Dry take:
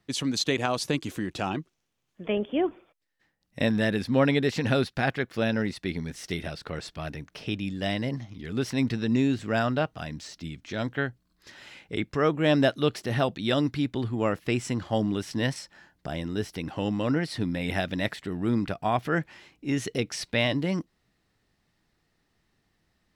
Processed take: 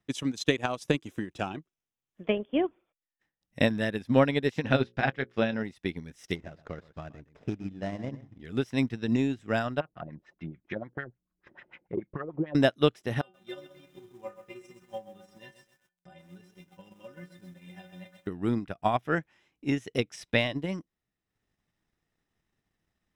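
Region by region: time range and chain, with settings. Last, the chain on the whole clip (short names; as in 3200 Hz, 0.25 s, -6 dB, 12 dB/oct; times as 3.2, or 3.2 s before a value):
4.62–5.63 LPF 4900 Hz + notches 60/120/180/240/300/360/420/480/540 Hz + doubler 23 ms -11 dB
6.35–8.41 median filter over 15 samples + LPF 4900 Hz + echo 0.122 s -11.5 dB
9.8–12.55 compressor 16:1, threshold -28 dBFS + comb 5.6 ms, depth 35% + LFO low-pass sine 6.8 Hz 340–2300 Hz
13.21–18.27 metallic resonator 180 Hz, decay 0.35 s, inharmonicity 0.008 + lo-fi delay 0.129 s, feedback 55%, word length 9-bit, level -6 dB
whole clip: notch 4400 Hz, Q 5.7; transient shaper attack +6 dB, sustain -7 dB; upward expander 1.5:1, over -32 dBFS; gain -1 dB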